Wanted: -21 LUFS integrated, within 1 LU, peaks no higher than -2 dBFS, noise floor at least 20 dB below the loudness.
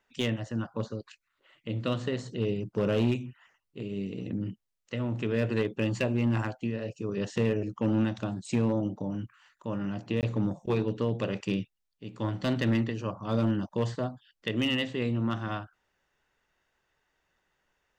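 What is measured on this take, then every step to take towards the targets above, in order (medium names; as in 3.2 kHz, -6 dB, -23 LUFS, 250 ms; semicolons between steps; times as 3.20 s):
clipped samples 0.7%; clipping level -19.5 dBFS; dropouts 1; longest dropout 18 ms; loudness -31.0 LUFS; peak level -19.5 dBFS; loudness target -21.0 LUFS
-> clip repair -19.5 dBFS; interpolate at 10.21 s, 18 ms; trim +10 dB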